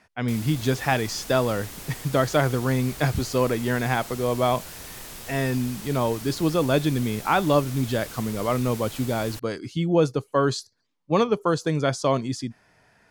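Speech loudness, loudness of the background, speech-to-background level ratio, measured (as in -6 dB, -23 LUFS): -24.5 LUFS, -38.0 LUFS, 13.5 dB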